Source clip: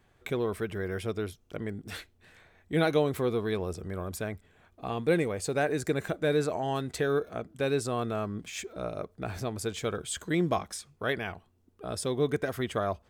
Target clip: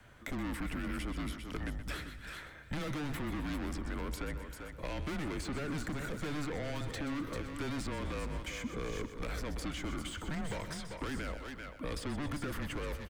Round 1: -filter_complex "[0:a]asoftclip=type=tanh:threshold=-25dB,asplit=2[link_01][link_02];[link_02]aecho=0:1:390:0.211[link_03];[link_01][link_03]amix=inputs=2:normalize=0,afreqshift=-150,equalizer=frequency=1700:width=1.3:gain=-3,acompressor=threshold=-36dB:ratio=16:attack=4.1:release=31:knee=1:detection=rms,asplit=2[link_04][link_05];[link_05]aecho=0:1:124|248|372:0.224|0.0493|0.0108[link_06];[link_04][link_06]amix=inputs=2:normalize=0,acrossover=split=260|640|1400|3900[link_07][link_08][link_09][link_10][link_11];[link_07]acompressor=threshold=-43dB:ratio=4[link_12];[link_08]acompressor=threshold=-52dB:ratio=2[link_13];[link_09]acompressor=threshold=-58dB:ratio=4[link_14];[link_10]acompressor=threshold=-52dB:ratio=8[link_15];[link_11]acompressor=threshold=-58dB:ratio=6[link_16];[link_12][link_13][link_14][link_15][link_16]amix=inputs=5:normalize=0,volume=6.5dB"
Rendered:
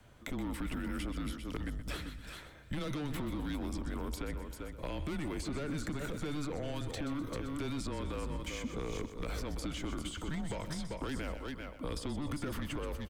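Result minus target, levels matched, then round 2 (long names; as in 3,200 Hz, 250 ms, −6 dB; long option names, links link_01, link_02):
soft clipping: distortion −7 dB; 2,000 Hz band −3.5 dB
-filter_complex "[0:a]asoftclip=type=tanh:threshold=-35dB,asplit=2[link_01][link_02];[link_02]aecho=0:1:390:0.211[link_03];[link_01][link_03]amix=inputs=2:normalize=0,afreqshift=-150,equalizer=frequency=1700:width=1.3:gain=4.5,acompressor=threshold=-36dB:ratio=16:attack=4.1:release=31:knee=1:detection=rms,asplit=2[link_04][link_05];[link_05]aecho=0:1:124|248|372:0.224|0.0493|0.0108[link_06];[link_04][link_06]amix=inputs=2:normalize=0,acrossover=split=260|640|1400|3900[link_07][link_08][link_09][link_10][link_11];[link_07]acompressor=threshold=-43dB:ratio=4[link_12];[link_08]acompressor=threshold=-52dB:ratio=2[link_13];[link_09]acompressor=threshold=-58dB:ratio=4[link_14];[link_10]acompressor=threshold=-52dB:ratio=8[link_15];[link_11]acompressor=threshold=-58dB:ratio=6[link_16];[link_12][link_13][link_14][link_15][link_16]amix=inputs=5:normalize=0,volume=6.5dB"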